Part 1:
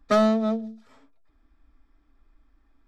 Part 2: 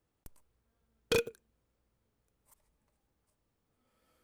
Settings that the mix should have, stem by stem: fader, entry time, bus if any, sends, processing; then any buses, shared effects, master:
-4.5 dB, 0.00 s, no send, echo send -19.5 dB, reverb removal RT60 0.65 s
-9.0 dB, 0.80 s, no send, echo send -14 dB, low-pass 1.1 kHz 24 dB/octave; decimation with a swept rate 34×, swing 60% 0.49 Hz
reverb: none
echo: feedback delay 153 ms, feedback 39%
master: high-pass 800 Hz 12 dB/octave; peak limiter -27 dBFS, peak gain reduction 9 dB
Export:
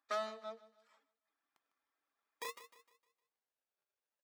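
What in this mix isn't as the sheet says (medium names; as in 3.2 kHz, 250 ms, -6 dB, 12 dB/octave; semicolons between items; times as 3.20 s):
stem 1 -4.5 dB -> -11.0 dB; stem 2: entry 0.80 s -> 1.30 s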